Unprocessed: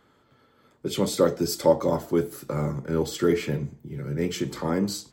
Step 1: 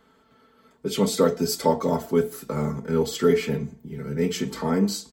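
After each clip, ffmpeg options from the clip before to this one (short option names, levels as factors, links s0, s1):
-af "aecho=1:1:4.5:0.79"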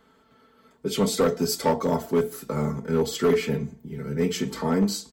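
-af "asoftclip=type=hard:threshold=0.178"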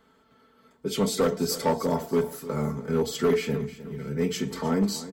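-af "aecho=1:1:308|616|924:0.168|0.0655|0.0255,volume=0.794"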